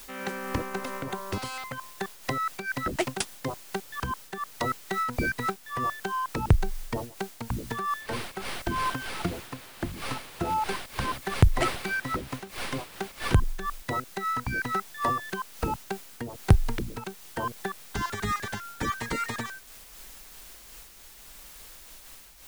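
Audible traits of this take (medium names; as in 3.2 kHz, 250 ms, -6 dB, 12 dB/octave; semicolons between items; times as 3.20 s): a quantiser's noise floor 8-bit, dither triangular; random flutter of the level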